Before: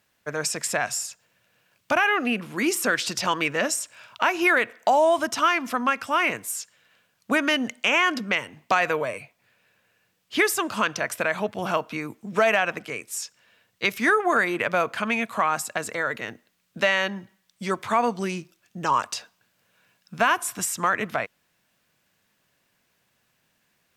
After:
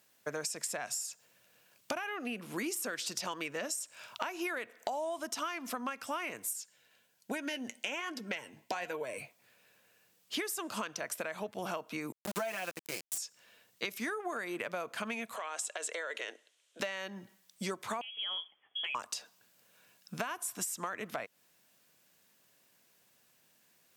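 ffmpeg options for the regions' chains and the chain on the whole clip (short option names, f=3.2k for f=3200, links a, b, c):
-filter_complex "[0:a]asettb=1/sr,asplit=3[a][b][c];[a]atrim=end=6.534[d];[b]atrim=start=6.53:end=9.18,asetpts=PTS-STARTPTS,afade=t=in:d=0.004:c=qsin,afade=t=out:st=2.646:d=0.004:c=qsin,asuperstop=centerf=1200:order=12:qfactor=6.7,flanger=delay=2.3:depth=7:regen=62:speed=1.2:shape=sinusoidal[e];[c]atrim=start=9.176[f];[d][e]acrossfade=d=0.004:c1=hsin:c2=qsin[g];[g][f]acrossfade=d=0.004:c1=qsin:c2=hsin,asettb=1/sr,asplit=3[h][i][j];[h]atrim=end=12.124[k];[i]atrim=start=12.12:end=13.18,asetpts=PTS-STARTPTS,afade=t=in:d=0.004:c=qsin,afade=t=out:st=1.056:d=0.004:c=qsin,aecho=1:1:5.8:0.77,atrim=end_sample=46746,aeval=exprs='val(0)*gte(abs(val(0)),0.0422)':c=same[l];[j]atrim=start=13.176[m];[k][l]acrossfade=d=0.004:c1=hsin:c2=qsin[n];[n][m]acrossfade=d=0.004:c1=qsin:c2=hsin,asettb=1/sr,asplit=3[o][p][q];[o]atrim=end=15.364[r];[p]atrim=start=15.36:end=16.8,asetpts=PTS-STARTPTS,afade=t=in:d=0.004:c=qsin,afade=t=out:st=1.436:d=0.004:c=qsin,acompressor=threshold=-28dB:ratio=4:attack=3.2:release=140:knee=1:detection=peak,highpass=f=420:w=0.5412,highpass=f=420:w=1.3066,equalizer=f=810:t=q:w=4:g=-6,equalizer=f=1.2k:t=q:w=4:g=-5,equalizer=f=3.2k:t=q:w=4:g=7,equalizer=f=4.8k:t=q:w=4:g=-5,lowpass=f=9.2k:w=0.5412,lowpass=f=9.2k:w=1.3066[s];[q]atrim=start=16.796[t];[r][s]acrossfade=d=0.004:c1=hsin:c2=qsin[u];[u][t]acrossfade=d=0.004:c1=qsin:c2=hsin,asettb=1/sr,asplit=3[v][w][x];[v]atrim=end=18.014[y];[w]atrim=start=18.01:end=18.95,asetpts=PTS-STARTPTS,afade=t=in:d=0.004:c=qsin,afade=t=out:st=0.936:d=0.004:c=qsin,lowpass=f=3k:t=q:w=0.5098,lowpass=f=3k:t=q:w=0.6013,lowpass=f=3k:t=q:w=0.9,lowpass=f=3k:t=q:w=2.563,afreqshift=-3500,bandreject=f=900:w=7.3,acompressor=threshold=-27dB:ratio=10:attack=3.2:release=140:knee=1:detection=peak[z];[x]atrim=start=18.946[aa];[y][z]acrossfade=d=0.004:c1=hsin:c2=qsin[ab];[ab][aa]acrossfade=d=0.004:c1=qsin:c2=hsin,highpass=f=490:p=1,equalizer=f=1.7k:w=0.38:g=-9,acompressor=threshold=-40dB:ratio=10,volume=6dB"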